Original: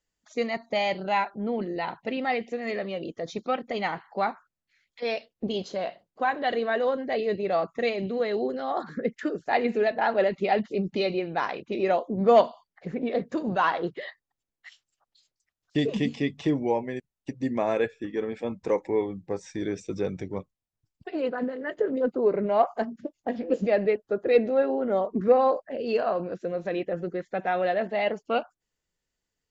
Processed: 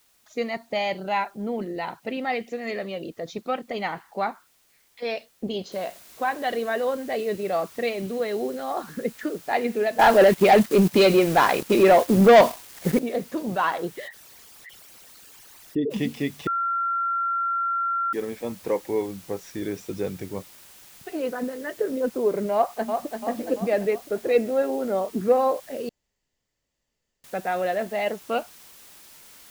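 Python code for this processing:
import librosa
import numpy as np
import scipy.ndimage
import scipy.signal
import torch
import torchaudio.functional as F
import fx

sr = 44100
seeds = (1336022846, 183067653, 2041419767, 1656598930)

y = fx.high_shelf(x, sr, hz=4900.0, db=6.5, at=(2.33, 3.03))
y = fx.noise_floor_step(y, sr, seeds[0], at_s=5.72, before_db=-63, after_db=-49, tilt_db=0.0)
y = fx.leveller(y, sr, passes=3, at=(9.99, 12.99))
y = fx.envelope_sharpen(y, sr, power=2.0, at=(14.07, 15.9), fade=0.02)
y = fx.echo_throw(y, sr, start_s=22.54, length_s=0.65, ms=340, feedback_pct=55, wet_db=-5.5)
y = fx.edit(y, sr, fx.bleep(start_s=16.47, length_s=1.66, hz=1370.0, db=-22.0),
    fx.room_tone_fill(start_s=25.89, length_s=1.35), tone=tone)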